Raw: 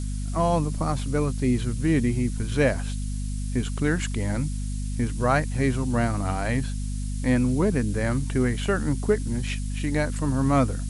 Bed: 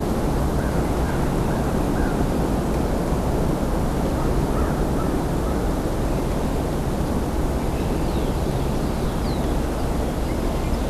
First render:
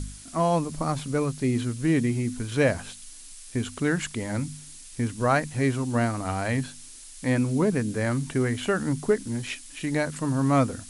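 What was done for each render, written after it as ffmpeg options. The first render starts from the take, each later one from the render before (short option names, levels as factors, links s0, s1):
-af "bandreject=f=50:t=h:w=4,bandreject=f=100:t=h:w=4,bandreject=f=150:t=h:w=4,bandreject=f=200:t=h:w=4,bandreject=f=250:t=h:w=4"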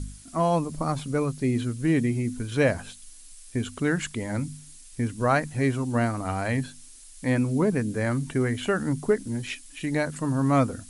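-af "afftdn=nr=6:nf=-45"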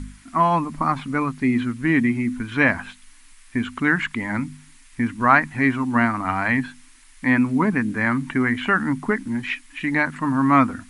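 -filter_complex "[0:a]acrossover=split=3900[s0][s1];[s1]acompressor=threshold=0.00224:ratio=4:attack=1:release=60[s2];[s0][s2]amix=inputs=2:normalize=0,equalizer=f=125:t=o:w=1:g=-4,equalizer=f=250:t=o:w=1:g=9,equalizer=f=500:t=o:w=1:g=-10,equalizer=f=1000:t=o:w=1:g=11,equalizer=f=2000:t=o:w=1:g=11"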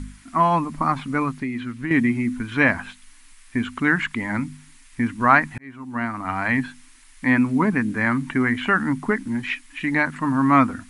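-filter_complex "[0:a]asettb=1/sr,asplit=3[s0][s1][s2];[s0]atrim=end=1.394[s3];[s1]atrim=start=1.39:end=1.91,asetpts=PTS-STARTPTS,afade=t=in:d=0.004:c=qsin,afade=t=out:st=0.516:d=0.004:c=qsin,acrossover=split=1500|4700[s4][s5][s6];[s4]acompressor=threshold=0.0447:ratio=4[s7];[s5]acompressor=threshold=0.0158:ratio=4[s8];[s6]acompressor=threshold=0.001:ratio=4[s9];[s7][s8][s9]amix=inputs=3:normalize=0[s10];[s2]atrim=start=1.906[s11];[s3][s10]acrossfade=d=0.004:c1=hsin:c2=qsin[s12];[s12][s11]acrossfade=d=0.004:c1=qsin:c2=hsin,asplit=2[s13][s14];[s13]atrim=end=5.58,asetpts=PTS-STARTPTS,afade=t=out:st=5.576:d=0.004:c=hsin[s15];[s14]atrim=start=5.58,asetpts=PTS-STARTPTS,afade=t=in:d=1.02[s16];[s15][s16]concat=n=2:v=0:a=1"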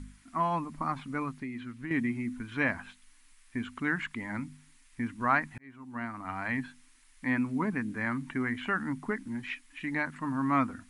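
-af "volume=0.282"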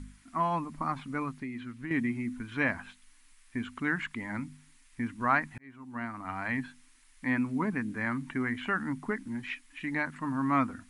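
-af anull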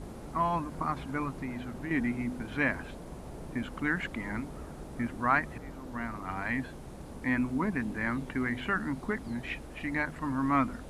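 -filter_complex "[1:a]volume=0.0794[s0];[0:a][s0]amix=inputs=2:normalize=0"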